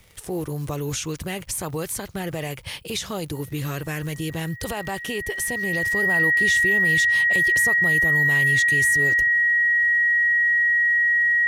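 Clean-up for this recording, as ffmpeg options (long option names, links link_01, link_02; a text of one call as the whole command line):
ffmpeg -i in.wav -af "adeclick=threshold=4,bandreject=frequency=1900:width=30" out.wav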